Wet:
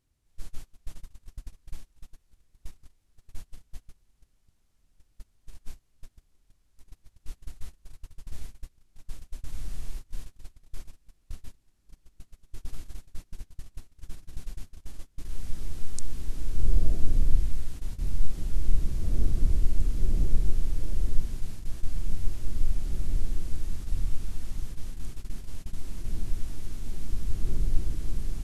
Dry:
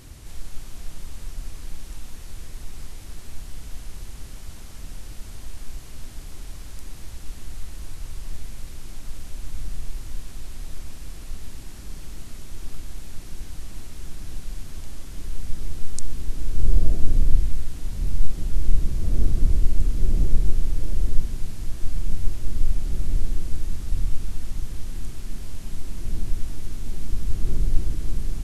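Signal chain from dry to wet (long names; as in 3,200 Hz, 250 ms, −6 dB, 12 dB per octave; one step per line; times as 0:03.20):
noise gate −25 dBFS, range −27 dB
level −4.5 dB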